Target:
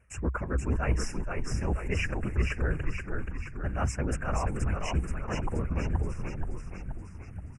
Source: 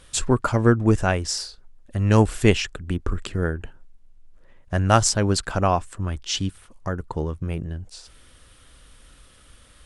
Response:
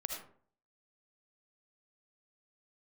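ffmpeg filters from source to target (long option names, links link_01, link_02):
-filter_complex "[0:a]agate=range=-12dB:threshold=-45dB:ratio=16:detection=peak,atempo=1.3,highshelf=frequency=2900:width_type=q:width=3:gain=-8,areverse,acompressor=threshold=-28dB:ratio=8,areverse,asuperstop=centerf=3900:order=20:qfactor=1.8,afftfilt=real='hypot(re,im)*cos(2*PI*random(0))':imag='hypot(re,im)*sin(2*PI*random(1))':win_size=512:overlap=0.75,equalizer=frequency=63:width_type=o:width=0.53:gain=15,asplit=2[link_01][link_02];[link_02]asplit=8[link_03][link_04][link_05][link_06][link_07][link_08][link_09][link_10];[link_03]adelay=477,afreqshift=-49,volume=-3.5dB[link_11];[link_04]adelay=954,afreqshift=-98,volume=-8.5dB[link_12];[link_05]adelay=1431,afreqshift=-147,volume=-13.6dB[link_13];[link_06]adelay=1908,afreqshift=-196,volume=-18.6dB[link_14];[link_07]adelay=2385,afreqshift=-245,volume=-23.6dB[link_15];[link_08]adelay=2862,afreqshift=-294,volume=-28.7dB[link_16];[link_09]adelay=3339,afreqshift=-343,volume=-33.7dB[link_17];[link_10]adelay=3816,afreqshift=-392,volume=-38.8dB[link_18];[link_11][link_12][link_13][link_14][link_15][link_16][link_17][link_18]amix=inputs=8:normalize=0[link_19];[link_01][link_19]amix=inputs=2:normalize=0,volume=5dB"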